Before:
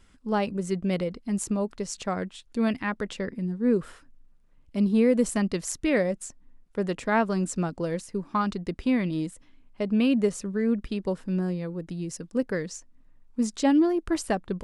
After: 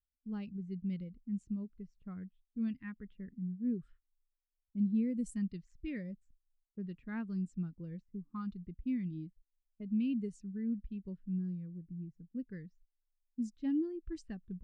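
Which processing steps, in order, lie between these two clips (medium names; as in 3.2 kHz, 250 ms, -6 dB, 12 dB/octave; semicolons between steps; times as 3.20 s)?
gate -44 dBFS, range -14 dB; level-controlled noise filter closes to 500 Hz, open at -20 dBFS; amplifier tone stack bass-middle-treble 6-0-2; in parallel at -1 dB: compression, threshold -53 dBFS, peak gain reduction 15 dB; on the sum: spectral contrast expander 1.5:1; trim +7 dB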